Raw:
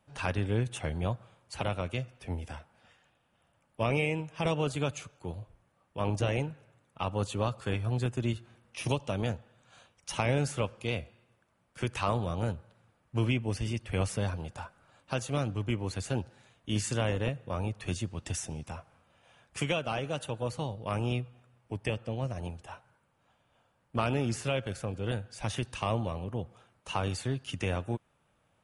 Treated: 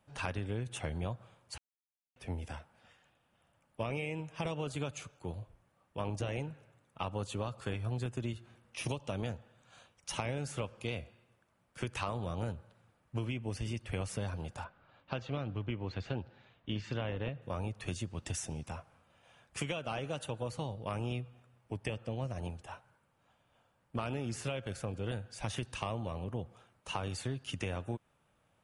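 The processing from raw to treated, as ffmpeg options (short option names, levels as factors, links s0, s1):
-filter_complex "[0:a]asettb=1/sr,asplit=3[s0][s1][s2];[s0]atrim=end=14.644[s3];[s1]atrim=start=14.64:end=17.42,asetpts=PTS-STARTPTS,afade=t=in:d=0.004:c=qsin,afade=t=out:st=2.776:d=0.004:c=qsin,lowpass=f=4100:w=0.5412,lowpass=f=4100:w=1.3066[s4];[s2]atrim=start=17.416[s5];[s3][s4]acrossfade=d=0.004:c1=hsin:c2=qsin[s6];[s6][s5]acrossfade=d=0.004:c1=qsin:c2=hsin,asplit=3[s7][s8][s9];[s7]atrim=end=1.58,asetpts=PTS-STARTPTS,afade=t=out:st=1.576:d=0.004:c=hsin[s10];[s8]atrim=start=1.58:end=2.16,asetpts=PTS-STARTPTS,volume=0[s11];[s9]atrim=start=2.16,asetpts=PTS-STARTPTS,afade=t=in:d=0.004:c=hsin[s12];[s10][s11][s12]concat=n=3:v=0:a=1,acompressor=threshold=0.0282:ratio=6,volume=0.841"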